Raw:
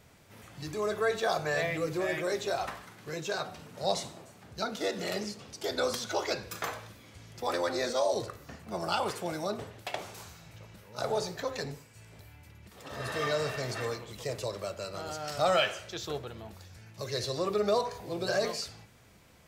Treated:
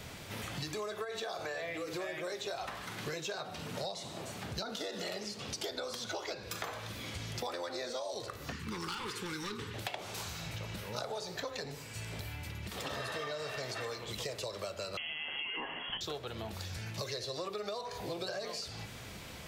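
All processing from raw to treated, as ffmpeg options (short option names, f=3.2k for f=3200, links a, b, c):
-filter_complex "[0:a]asettb=1/sr,asplit=3[a][b][c];[a]atrim=end=1.044[d];[b]atrim=start=1.04:end=1.94,asetpts=PTS-STARTPTS,afade=t=in:d=0.004:c=qsin,afade=t=out:st=0.896:d=0.004:c=qsin,equalizer=f=150:w=5.6:g=-14.5,acompressor=threshold=-32dB:ratio=2.5:attack=3.2:release=140:knee=1:detection=peak,asplit=2[e][f];[f]adelay=47,volume=-11.5dB[g];[e][g]amix=inputs=2:normalize=0,atrim=end_sample=39690[h];[c]atrim=start=1.936[i];[d][h]acrossfade=d=0.004:c1=hsin:c2=qsin[j];[j][i]acrossfade=d=0.004:c1=qsin:c2=hsin,asettb=1/sr,asplit=3[k][l][m];[k]atrim=end=4.614[n];[l]atrim=start=4.61:end=5.06,asetpts=PTS-STARTPTS,afade=t=in:d=0.004:c=qsin,afade=t=out:st=0.446:d=0.004:c=qsin,equalizer=f=2.3k:w=6.5:g=-7,acompressor=threshold=-32dB:ratio=3:attack=3.2:release=140:knee=1:detection=peak[o];[m]atrim=start=5.056[p];[n][o]acrossfade=d=0.004:c1=hsin:c2=qsin[q];[q][p]acrossfade=d=0.004:c1=qsin:c2=hsin,asettb=1/sr,asplit=3[r][s][t];[r]atrim=end=8.524[u];[s]atrim=start=8.52:end=9.74,asetpts=PTS-STARTPTS,afade=t=in:d=0.004:c=qsin,afade=t=out:st=1.216:d=0.004:c=qsin,highshelf=f=9.1k:g=-5.5,volume=31.5dB,asoftclip=hard,volume=-31.5dB,asuperstop=centerf=650:order=4:qfactor=1.1[v];[t]atrim=start=9.736[w];[u][v]acrossfade=d=0.004:c1=hsin:c2=qsin[x];[x][w]acrossfade=d=0.004:c1=qsin:c2=hsin,asettb=1/sr,asplit=3[y][z][aa];[y]atrim=end=14.974[ab];[z]atrim=start=14.97:end=16.01,asetpts=PTS-STARTPTS,afade=t=in:d=0.004:c=qsin,afade=t=out:st=1.036:d=0.004:c=qsin,aemphasis=mode=production:type=75fm,acompressor=threshold=-28dB:ratio=2:attack=3.2:release=140:knee=1:detection=peak,lowpass=f=2.9k:t=q:w=0.5098,lowpass=f=2.9k:t=q:w=0.6013,lowpass=f=2.9k:t=q:w=0.9,lowpass=f=2.9k:t=q:w=2.563,afreqshift=-3400[ac];[aa]atrim=start=16.006[ad];[ab][ac]acrossfade=d=0.004:c1=hsin:c2=qsin[ae];[ae][ad]acrossfade=d=0.004:c1=qsin:c2=hsin,acrossover=split=430|1100[af][ag][ah];[af]acompressor=threshold=-44dB:ratio=4[ai];[ag]acompressor=threshold=-34dB:ratio=4[aj];[ah]acompressor=threshold=-40dB:ratio=4[ak];[ai][aj][ak]amix=inputs=3:normalize=0,equalizer=f=3.5k:w=1.1:g=5,acompressor=threshold=-48dB:ratio=8,volume=11dB"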